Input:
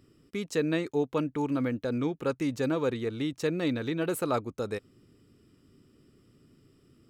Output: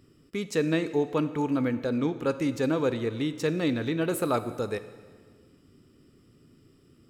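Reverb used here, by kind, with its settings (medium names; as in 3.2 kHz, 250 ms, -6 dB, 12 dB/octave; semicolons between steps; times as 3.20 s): plate-style reverb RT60 1.7 s, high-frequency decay 0.9×, DRR 11.5 dB; trim +2 dB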